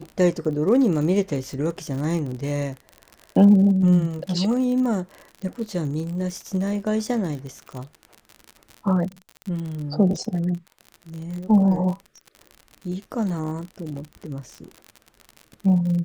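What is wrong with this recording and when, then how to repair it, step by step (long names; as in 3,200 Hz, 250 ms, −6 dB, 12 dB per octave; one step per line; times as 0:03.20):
surface crackle 54 per second −30 dBFS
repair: click removal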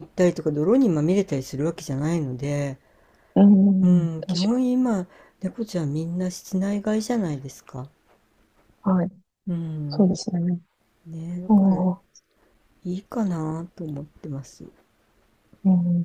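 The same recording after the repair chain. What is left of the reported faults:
none of them is left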